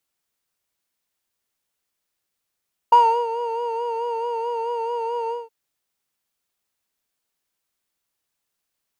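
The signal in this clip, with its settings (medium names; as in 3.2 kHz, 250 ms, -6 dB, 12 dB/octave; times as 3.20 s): synth patch with vibrato A#5, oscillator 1 square, oscillator 2 level -16 dB, sub -11 dB, noise -14 dB, filter bandpass, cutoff 390 Hz, Q 3.6, filter envelope 1 oct, attack 6.3 ms, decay 0.34 s, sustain -11 dB, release 0.19 s, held 2.38 s, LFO 4.6 Hz, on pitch 50 cents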